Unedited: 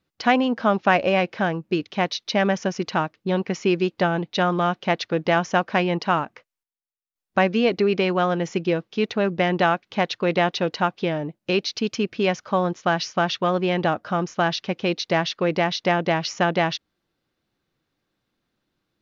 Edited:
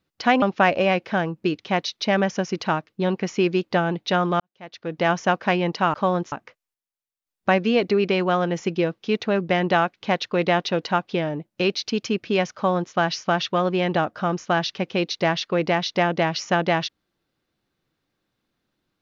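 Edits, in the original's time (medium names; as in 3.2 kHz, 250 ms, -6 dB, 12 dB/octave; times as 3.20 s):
0.42–0.69 s: delete
4.67–5.37 s: fade in quadratic
12.44–12.82 s: copy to 6.21 s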